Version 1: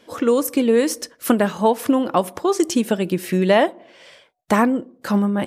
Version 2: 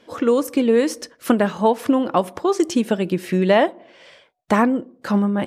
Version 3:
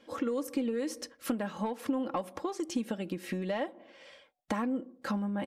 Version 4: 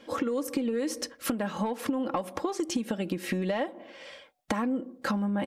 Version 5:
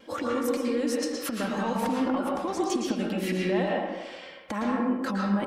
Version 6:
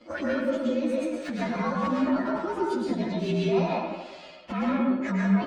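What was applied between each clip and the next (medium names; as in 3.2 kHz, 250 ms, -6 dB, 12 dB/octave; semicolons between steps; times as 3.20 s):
treble shelf 8.2 kHz -11.5 dB
saturation -6 dBFS, distortion -24 dB; compression, threshold -23 dBFS, peak gain reduction 10 dB; comb 3.7 ms, depth 46%; trim -8 dB
compression, threshold -33 dBFS, peak gain reduction 7.5 dB; trim +7.5 dB
peak limiter -22.5 dBFS, peak gain reduction 7.5 dB; wow and flutter 58 cents; reverberation RT60 1.1 s, pre-delay 106 ms, DRR -3 dB
frequency axis rescaled in octaves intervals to 115%; distance through air 130 m; trim +4 dB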